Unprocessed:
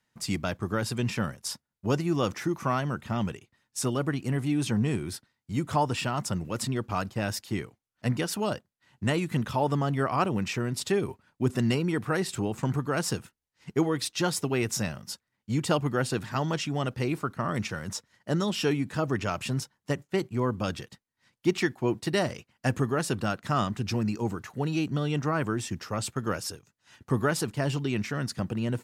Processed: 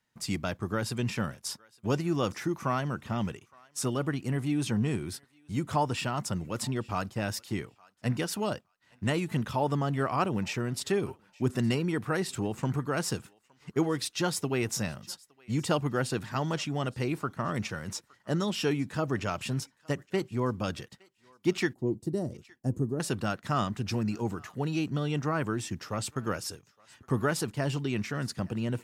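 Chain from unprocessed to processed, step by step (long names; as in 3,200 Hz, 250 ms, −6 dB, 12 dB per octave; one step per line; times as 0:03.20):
0:21.73–0:23.00: drawn EQ curve 350 Hz 0 dB, 2,400 Hz −29 dB, 7,800 Hz −8 dB
feedback echo with a high-pass in the loop 865 ms, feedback 19%, high-pass 1,000 Hz, level −23 dB
level −2 dB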